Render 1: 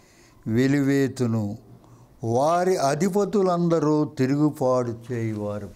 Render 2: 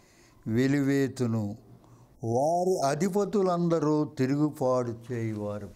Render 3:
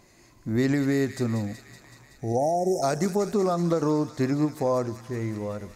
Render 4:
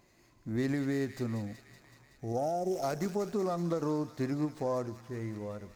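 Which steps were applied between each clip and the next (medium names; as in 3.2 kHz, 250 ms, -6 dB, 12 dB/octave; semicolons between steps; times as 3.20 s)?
spectral selection erased 2.15–2.83 s, 900–5100 Hz; endings held to a fixed fall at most 270 dB/s; trim -4.5 dB
feedback echo behind a high-pass 188 ms, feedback 75%, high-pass 1.9 kHz, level -8 dB; trim +1.5 dB
sliding maximum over 3 samples; trim -8 dB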